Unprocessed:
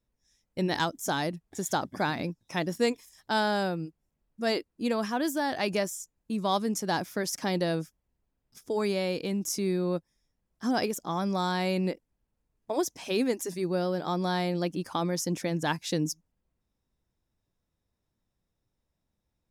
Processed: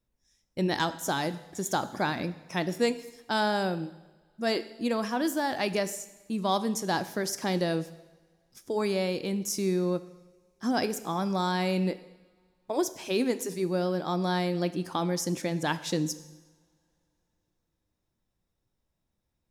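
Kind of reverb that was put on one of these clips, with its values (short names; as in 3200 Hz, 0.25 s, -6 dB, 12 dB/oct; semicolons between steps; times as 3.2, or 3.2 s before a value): two-slope reverb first 0.99 s, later 3.4 s, from -25 dB, DRR 12 dB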